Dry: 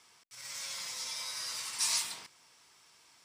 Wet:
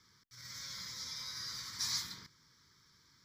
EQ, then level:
bass and treble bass +14 dB, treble 0 dB
phaser with its sweep stopped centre 2,700 Hz, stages 6
−2.5 dB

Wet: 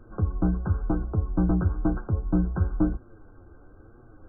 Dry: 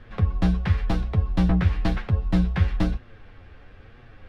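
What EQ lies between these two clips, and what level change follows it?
linear-phase brick-wall low-pass 1,600 Hz
parametric band 330 Hz +12 dB 0.45 octaves
−4.0 dB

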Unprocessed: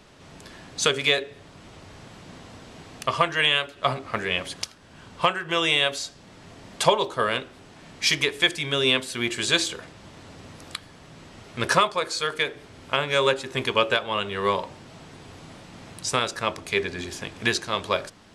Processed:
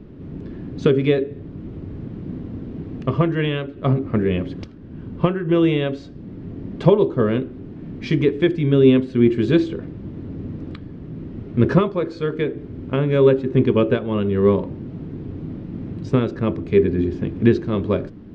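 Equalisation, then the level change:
head-to-tape spacing loss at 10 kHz 39 dB
low shelf with overshoot 490 Hz +14 dB, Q 1.5
+1.0 dB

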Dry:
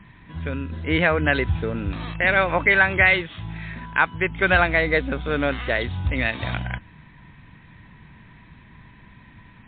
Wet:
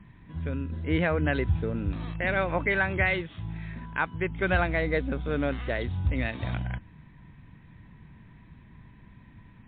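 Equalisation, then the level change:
tilt shelving filter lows +4.5 dB, about 640 Hz
−6.5 dB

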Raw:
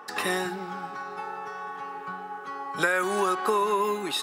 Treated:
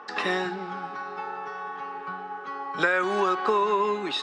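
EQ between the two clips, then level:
band-pass filter 150–7,600 Hz
high-frequency loss of the air 120 metres
parametric band 5,100 Hz +2.5 dB 2.2 octaves
+1.5 dB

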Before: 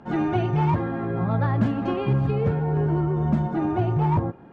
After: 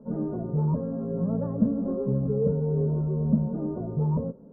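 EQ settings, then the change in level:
transistor ladder low-pass 680 Hz, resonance 25%
phaser with its sweep stopped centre 510 Hz, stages 8
+6.5 dB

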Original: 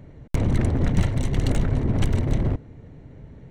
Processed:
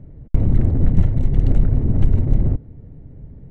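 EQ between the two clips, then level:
spectral tilt −4.5 dB per octave
low-shelf EQ 110 Hz −7.5 dB
notch filter 1,000 Hz, Q 21
−6.5 dB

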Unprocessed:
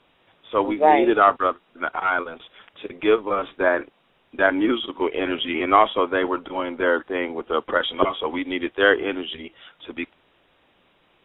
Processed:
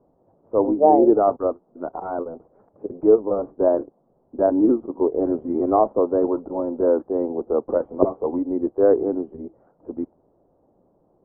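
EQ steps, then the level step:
inverse Chebyshev low-pass filter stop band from 3,300 Hz, stop band 70 dB
high-frequency loss of the air 470 metres
low-shelf EQ 65 Hz −6.5 dB
+5.0 dB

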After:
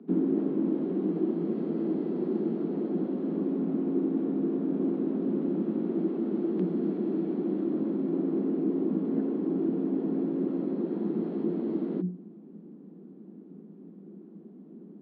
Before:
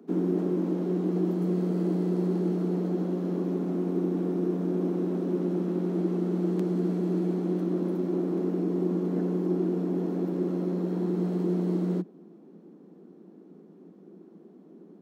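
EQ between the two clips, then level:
low-pass filter 3,700 Hz 24 dB per octave
parametric band 210 Hz +12 dB 1.4 octaves
mains-hum notches 60/120/180/240/300/360 Hz
−5.0 dB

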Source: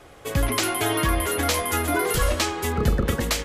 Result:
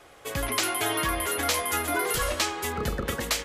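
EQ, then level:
low-shelf EQ 360 Hz −9.5 dB
−1.5 dB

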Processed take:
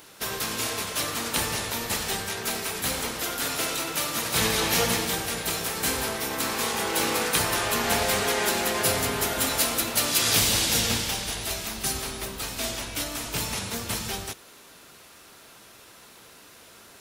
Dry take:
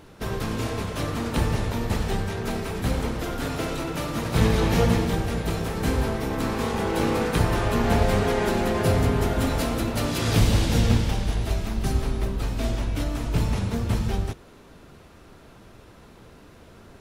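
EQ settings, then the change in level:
spectral tilt +4 dB per octave
0.0 dB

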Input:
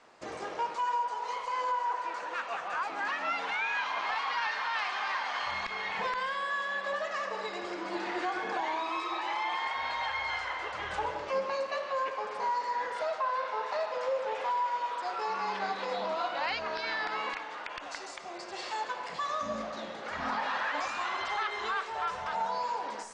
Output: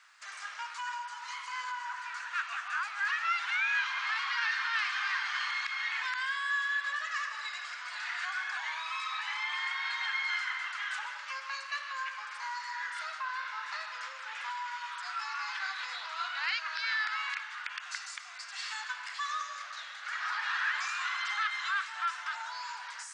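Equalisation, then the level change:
four-pole ladder high-pass 1,200 Hz, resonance 45%
spectral tilt +3 dB per octave
+4.5 dB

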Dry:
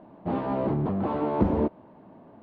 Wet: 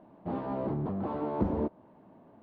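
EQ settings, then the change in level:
dynamic equaliser 2,600 Hz, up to −4 dB, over −51 dBFS, Q 1.2
−6.0 dB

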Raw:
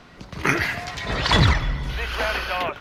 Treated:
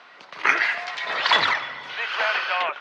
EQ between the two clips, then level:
band-pass filter 790–3,700 Hz
+3.5 dB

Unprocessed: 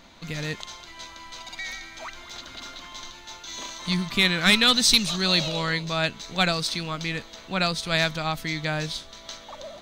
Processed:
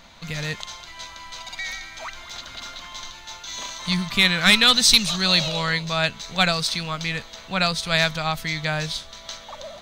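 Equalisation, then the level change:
parametric band 320 Hz −9 dB 0.87 octaves
+3.5 dB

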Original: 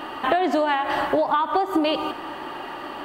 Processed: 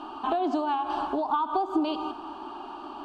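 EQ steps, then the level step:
high-frequency loss of the air 90 metres
phaser with its sweep stopped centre 520 Hz, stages 6
−3.5 dB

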